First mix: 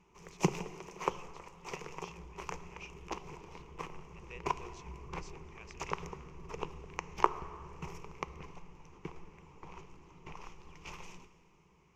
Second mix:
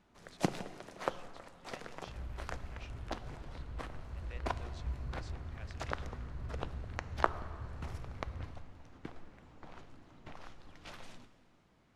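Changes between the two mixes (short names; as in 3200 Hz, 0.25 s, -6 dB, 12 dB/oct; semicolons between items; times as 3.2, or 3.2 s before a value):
second sound: remove band-pass 350 Hz, Q 1.2; master: remove ripple EQ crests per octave 0.76, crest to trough 14 dB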